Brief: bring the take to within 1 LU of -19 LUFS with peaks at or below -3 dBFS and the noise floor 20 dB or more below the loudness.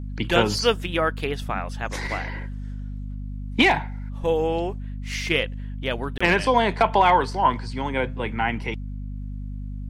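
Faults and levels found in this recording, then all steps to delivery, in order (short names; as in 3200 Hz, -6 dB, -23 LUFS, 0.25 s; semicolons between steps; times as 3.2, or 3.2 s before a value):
dropouts 1; longest dropout 25 ms; hum 50 Hz; harmonics up to 250 Hz; hum level -29 dBFS; loudness -23.5 LUFS; peak -4.5 dBFS; loudness target -19.0 LUFS
-> interpolate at 6.18, 25 ms; de-hum 50 Hz, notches 5; gain +4.5 dB; limiter -3 dBFS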